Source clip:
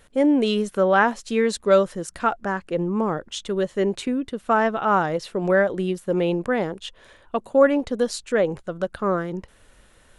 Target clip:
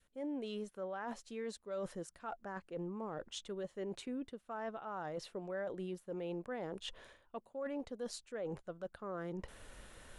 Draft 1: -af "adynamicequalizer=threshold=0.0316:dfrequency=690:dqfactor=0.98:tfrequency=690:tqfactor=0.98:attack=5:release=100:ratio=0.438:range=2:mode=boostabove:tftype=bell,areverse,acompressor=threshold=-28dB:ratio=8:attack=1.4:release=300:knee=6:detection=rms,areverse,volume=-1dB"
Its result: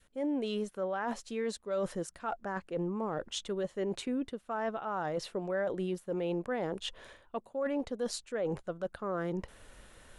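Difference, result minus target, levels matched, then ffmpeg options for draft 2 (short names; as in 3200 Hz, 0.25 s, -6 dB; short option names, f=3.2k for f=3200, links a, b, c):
compressor: peak gain reduction -8 dB
-af "adynamicequalizer=threshold=0.0316:dfrequency=690:dqfactor=0.98:tfrequency=690:tqfactor=0.98:attack=5:release=100:ratio=0.438:range=2:mode=boostabove:tftype=bell,areverse,acompressor=threshold=-37dB:ratio=8:attack=1.4:release=300:knee=6:detection=rms,areverse,volume=-1dB"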